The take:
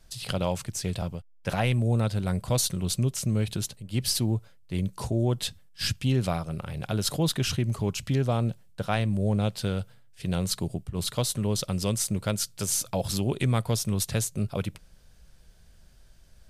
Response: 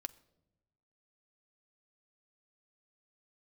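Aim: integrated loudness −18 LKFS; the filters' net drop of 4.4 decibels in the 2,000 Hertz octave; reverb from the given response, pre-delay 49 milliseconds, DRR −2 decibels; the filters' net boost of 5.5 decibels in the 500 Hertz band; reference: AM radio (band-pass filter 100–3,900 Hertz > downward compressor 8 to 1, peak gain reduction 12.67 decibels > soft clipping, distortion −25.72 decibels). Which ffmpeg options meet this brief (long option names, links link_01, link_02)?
-filter_complex "[0:a]equalizer=frequency=500:width_type=o:gain=7,equalizer=frequency=2000:width_type=o:gain=-6,asplit=2[link_01][link_02];[1:a]atrim=start_sample=2205,adelay=49[link_03];[link_02][link_03]afir=irnorm=-1:irlink=0,volume=5dB[link_04];[link_01][link_04]amix=inputs=2:normalize=0,highpass=100,lowpass=3900,acompressor=threshold=-25dB:ratio=8,asoftclip=threshold=-16.5dB,volume=13.5dB"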